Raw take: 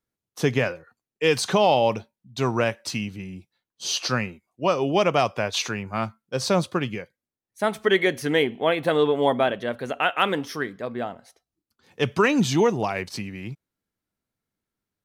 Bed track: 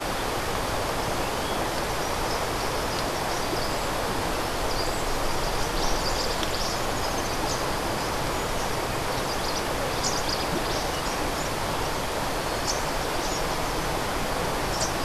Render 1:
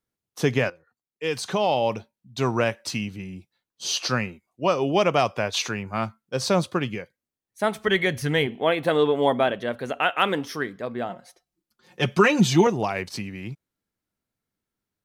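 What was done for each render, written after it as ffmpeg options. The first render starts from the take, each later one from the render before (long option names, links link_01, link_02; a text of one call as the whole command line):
ffmpeg -i in.wav -filter_complex "[0:a]asplit=3[link_01][link_02][link_03];[link_01]afade=type=out:start_time=7.84:duration=0.02[link_04];[link_02]asubboost=boost=7.5:cutoff=110,afade=type=in:start_time=7.84:duration=0.02,afade=type=out:start_time=8.46:duration=0.02[link_05];[link_03]afade=type=in:start_time=8.46:duration=0.02[link_06];[link_04][link_05][link_06]amix=inputs=3:normalize=0,asettb=1/sr,asplit=3[link_07][link_08][link_09];[link_07]atrim=end=11.094[link_10];[link_08]atrim=start=11.09:end=12.67,asetpts=PTS-STARTPTS,afade=type=in:duration=0.004:curve=qsin,afade=type=out:start_time=1.576:duration=0.004:curve=qsin,aecho=1:1:5.6:0.81,atrim=end_sample=69678[link_11];[link_09]atrim=start=12.666[link_12];[link_10][link_11]acrossfade=duration=0.004:curve1=hsin:curve2=qsin[link_13];[link_13][link_12]acrossfade=duration=0.004:curve1=qsin:curve2=hsin,asplit=2[link_14][link_15];[link_14]atrim=end=0.7,asetpts=PTS-STARTPTS,afade=type=out:start_time=0.696:duration=0.004:curve=hsin:silence=0.188365[link_16];[link_15]atrim=start=0.7,asetpts=PTS-STARTPTS,afade=type=in:duration=1.71:silence=0.188365[link_17];[link_16][link_17]concat=n=2:v=0:a=1" out.wav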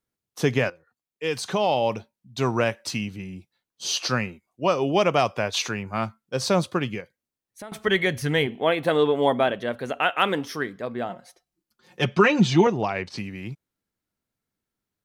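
ffmpeg -i in.wav -filter_complex "[0:a]asettb=1/sr,asplit=3[link_01][link_02][link_03];[link_01]atrim=end=7.004[link_04];[link_02]atrim=start=7:end=7.72,asetpts=PTS-STARTPTS,afade=type=in:duration=0.004:curve=qsin,afade=type=out:start_time=0.716:duration=0.004:curve=qsin,acompressor=threshold=-36dB:ratio=6:attack=3.2:release=140:knee=1:detection=peak[link_05];[link_03]atrim=start=7.716[link_06];[link_04][link_05]acrossfade=duration=0.004:curve1=hsin:curve2=qsin[link_07];[link_07][link_06]acrossfade=duration=0.004:curve1=qsin:curve2=hsin,asettb=1/sr,asplit=3[link_08][link_09][link_10];[link_08]atrim=end=12.054[link_11];[link_09]atrim=start=12.05:end=13.18,asetpts=PTS-STARTPTS,afade=type=in:duration=0.004:curve=qsin,afade=type=out:start_time=1.126:duration=0.004:curve=qsin,lowpass=4900[link_12];[link_10]atrim=start=13.176[link_13];[link_11][link_12]acrossfade=duration=0.004:curve1=hsin:curve2=qsin[link_14];[link_14][link_13]acrossfade=duration=0.004:curve1=qsin:curve2=hsin" out.wav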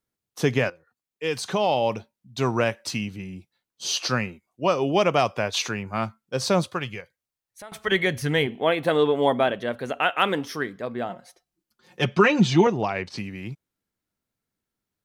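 ffmpeg -i in.wav -filter_complex "[0:a]asettb=1/sr,asplit=3[link_01][link_02][link_03];[link_01]atrim=end=6.684[link_04];[link_02]atrim=start=6.68:end=7.92,asetpts=PTS-STARTPTS,afade=type=in:duration=0.004:curve=qsin,afade=type=out:start_time=1.236:duration=0.004:curve=qsin,equalizer=frequency=260:width_type=o:width=1.4:gain=-10[link_05];[link_03]atrim=start=7.916[link_06];[link_04][link_05]acrossfade=duration=0.004:curve1=hsin:curve2=qsin[link_07];[link_07][link_06]acrossfade=duration=0.004:curve1=qsin:curve2=hsin" out.wav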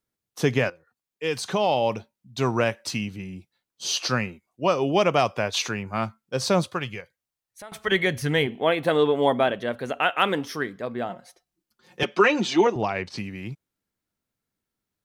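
ffmpeg -i in.wav -filter_complex "[0:a]asettb=1/sr,asplit=3[link_01][link_02][link_03];[link_01]atrim=end=12.034[link_04];[link_02]atrim=start=12.03:end=12.76,asetpts=PTS-STARTPTS,afade=type=in:duration=0.004:curve=qsin,afade=type=out:start_time=0.726:duration=0.004:curve=qsin,highpass=frequency=260:width=0.5412,highpass=frequency=260:width=1.3066[link_05];[link_03]atrim=start=12.756[link_06];[link_04][link_05]acrossfade=duration=0.004:curve1=hsin:curve2=qsin[link_07];[link_07][link_06]acrossfade=duration=0.004:curve1=qsin:curve2=hsin" out.wav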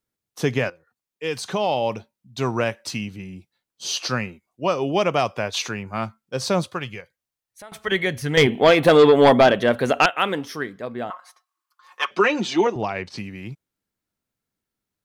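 ffmpeg -i in.wav -filter_complex "[0:a]asettb=1/sr,asplit=3[link_01][link_02][link_03];[link_01]atrim=end=8.374[link_04];[link_02]atrim=start=8.37:end=10.06,asetpts=PTS-STARTPTS,afade=type=in:duration=0.004:curve=qsin,afade=type=out:start_time=1.686:duration=0.004:curve=qsin,aeval=exprs='0.447*sin(PI/2*2*val(0)/0.447)':channel_layout=same[link_05];[link_03]atrim=start=10.056[link_06];[link_04][link_05]acrossfade=duration=0.004:curve1=hsin:curve2=qsin[link_07];[link_07][link_06]acrossfade=duration=0.004:curve1=qsin:curve2=hsin,asettb=1/sr,asplit=3[link_08][link_09][link_10];[link_08]atrim=end=11.104[link_11];[link_09]atrim=start=11.1:end=12.11,asetpts=PTS-STARTPTS,afade=type=in:duration=0.004:curve=qsin,afade=type=out:start_time=1.006:duration=0.004:curve=qsin,highpass=frequency=1100:width_type=q:width=13[link_12];[link_10]atrim=start=12.106[link_13];[link_11][link_12]acrossfade=duration=0.004:curve1=hsin:curve2=qsin[link_14];[link_14][link_13]acrossfade=duration=0.004:curve1=qsin:curve2=hsin" out.wav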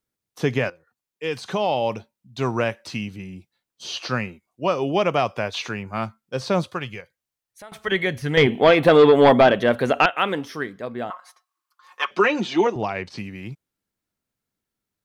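ffmpeg -i in.wav -filter_complex "[0:a]acrossover=split=4100[link_01][link_02];[link_02]acompressor=threshold=-43dB:ratio=4:attack=1:release=60[link_03];[link_01][link_03]amix=inputs=2:normalize=0" out.wav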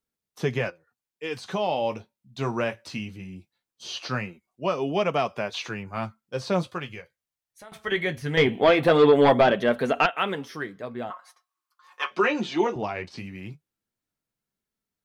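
ffmpeg -i in.wav -af "flanger=delay=4.4:depth=9.3:regen=-47:speed=0.2:shape=sinusoidal" out.wav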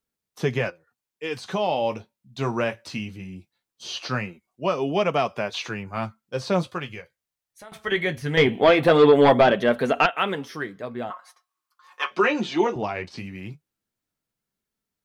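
ffmpeg -i in.wav -af "volume=2dB" out.wav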